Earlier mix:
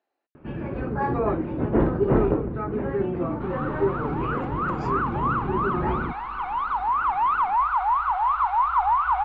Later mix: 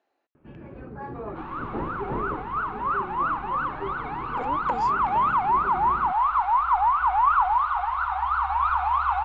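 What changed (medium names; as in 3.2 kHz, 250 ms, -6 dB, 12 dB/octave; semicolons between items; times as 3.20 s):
speech +5.5 dB; first sound -11.5 dB; second sound: entry -2.05 s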